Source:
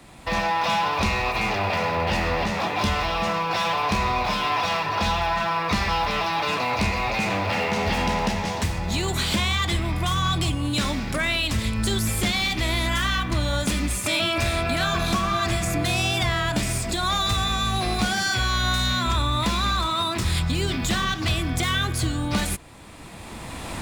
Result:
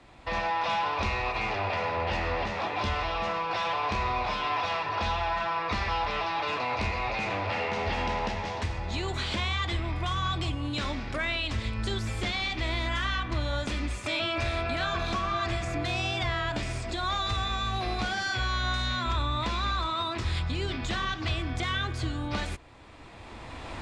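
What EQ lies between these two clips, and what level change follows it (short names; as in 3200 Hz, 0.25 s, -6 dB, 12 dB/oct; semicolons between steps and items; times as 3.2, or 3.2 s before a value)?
air absorption 120 m; bell 180 Hz -9.5 dB 0.72 oct; -4.5 dB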